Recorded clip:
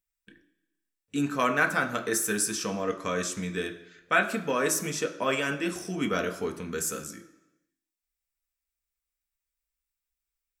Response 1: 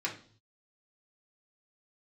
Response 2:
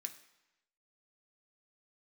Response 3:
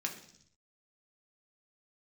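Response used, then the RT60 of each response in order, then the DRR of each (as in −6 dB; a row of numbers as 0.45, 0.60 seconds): 2; 0.50, 0.95, 0.65 seconds; −3.0, 4.5, 0.5 decibels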